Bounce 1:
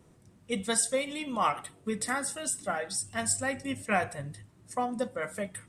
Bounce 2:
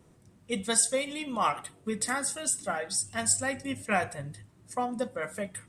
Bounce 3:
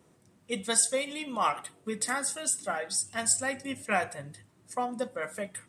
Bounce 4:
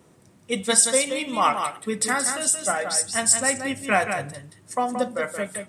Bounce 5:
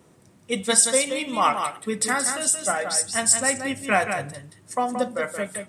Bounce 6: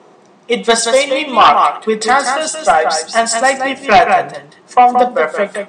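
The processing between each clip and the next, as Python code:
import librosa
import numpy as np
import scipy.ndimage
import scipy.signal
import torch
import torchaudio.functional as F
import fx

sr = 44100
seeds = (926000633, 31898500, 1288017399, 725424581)

y1 = fx.dynamic_eq(x, sr, hz=6700.0, q=0.78, threshold_db=-43.0, ratio=4.0, max_db=4)
y2 = fx.highpass(y1, sr, hz=220.0, slope=6)
y3 = y2 + 10.0 ** (-7.0 / 20.0) * np.pad(y2, (int(176 * sr / 1000.0), 0))[:len(y2)]
y3 = y3 * librosa.db_to_amplitude(7.0)
y4 = y3
y5 = fx.cabinet(y4, sr, low_hz=200.0, low_slope=24, high_hz=6100.0, hz=(270.0, 410.0, 750.0, 1100.0, 5300.0), db=(-6, 5, 9, 6, -3))
y5 = fx.fold_sine(y5, sr, drive_db=7, ceiling_db=-2.0)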